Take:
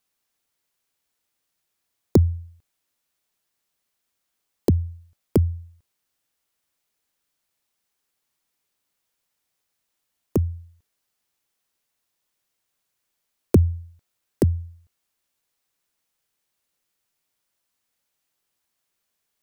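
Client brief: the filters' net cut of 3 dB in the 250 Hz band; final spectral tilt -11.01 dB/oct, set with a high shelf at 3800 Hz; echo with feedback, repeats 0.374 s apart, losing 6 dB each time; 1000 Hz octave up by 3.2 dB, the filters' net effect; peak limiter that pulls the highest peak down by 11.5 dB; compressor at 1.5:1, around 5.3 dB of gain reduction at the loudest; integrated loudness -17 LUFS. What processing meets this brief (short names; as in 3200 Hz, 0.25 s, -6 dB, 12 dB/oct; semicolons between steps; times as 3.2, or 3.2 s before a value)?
bell 250 Hz -4.5 dB; bell 1000 Hz +5 dB; high shelf 3800 Hz -5 dB; compressor 1.5:1, threshold -27 dBFS; limiter -18.5 dBFS; feedback echo 0.374 s, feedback 50%, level -6 dB; gain +17.5 dB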